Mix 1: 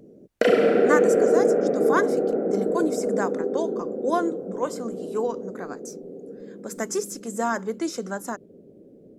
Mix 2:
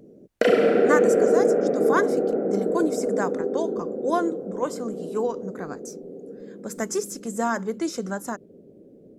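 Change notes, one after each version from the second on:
speech: remove high-pass 200 Hz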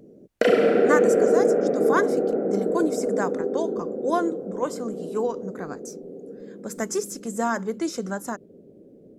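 no change

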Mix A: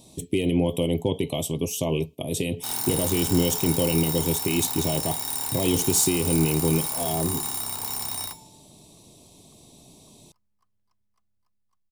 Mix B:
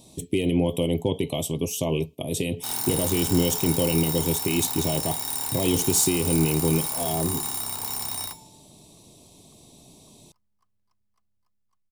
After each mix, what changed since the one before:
no change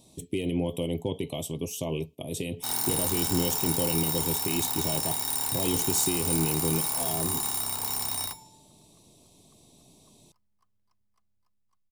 speech -6.0 dB

